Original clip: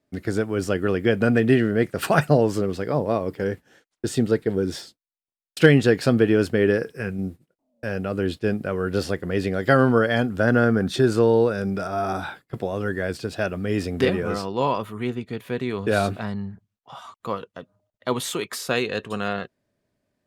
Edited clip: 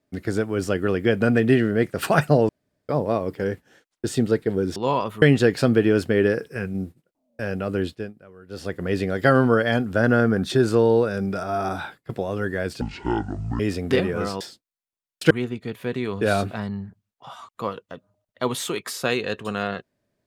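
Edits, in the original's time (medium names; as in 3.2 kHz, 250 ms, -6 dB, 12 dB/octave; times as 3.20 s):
2.49–2.89 s: room tone
4.76–5.66 s: swap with 14.50–14.96 s
8.24–9.25 s: dip -21 dB, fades 0.33 s
13.25–13.69 s: speed 56%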